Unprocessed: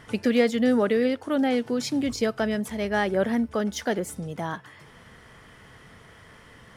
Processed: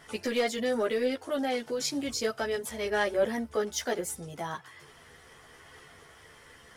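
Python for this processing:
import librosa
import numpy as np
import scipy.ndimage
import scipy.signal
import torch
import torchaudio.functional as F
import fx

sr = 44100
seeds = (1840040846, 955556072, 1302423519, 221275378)

y = 10.0 ** (-12.5 / 20.0) * np.tanh(x / 10.0 ** (-12.5 / 20.0))
y = fx.chorus_voices(y, sr, voices=6, hz=0.72, base_ms=13, depth_ms=1.6, mix_pct=50)
y = fx.bass_treble(y, sr, bass_db=-9, treble_db=6)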